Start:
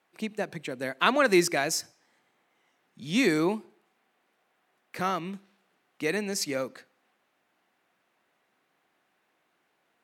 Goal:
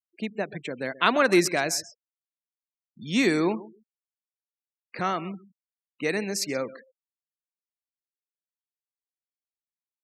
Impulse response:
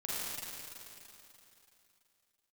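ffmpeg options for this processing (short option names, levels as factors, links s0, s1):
-af "aecho=1:1:131|262:0.126|0.0277,afftfilt=real='re*gte(hypot(re,im),0.00794)':imag='im*gte(hypot(re,im),0.00794)':win_size=1024:overlap=0.75,volume=1.19"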